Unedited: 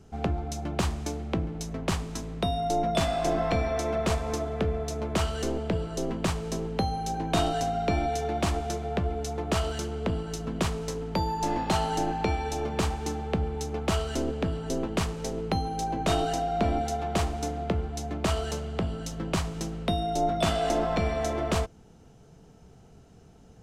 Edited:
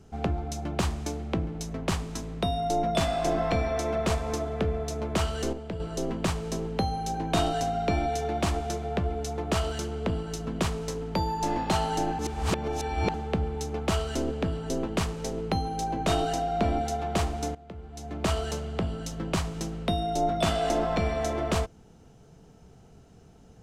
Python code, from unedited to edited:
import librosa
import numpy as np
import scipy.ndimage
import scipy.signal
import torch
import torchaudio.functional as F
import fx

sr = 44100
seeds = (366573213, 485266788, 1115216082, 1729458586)

y = fx.edit(x, sr, fx.clip_gain(start_s=5.53, length_s=0.27, db=-7.0),
    fx.reverse_span(start_s=12.19, length_s=0.95),
    fx.fade_in_from(start_s=17.55, length_s=0.71, curve='qua', floor_db=-17.5), tone=tone)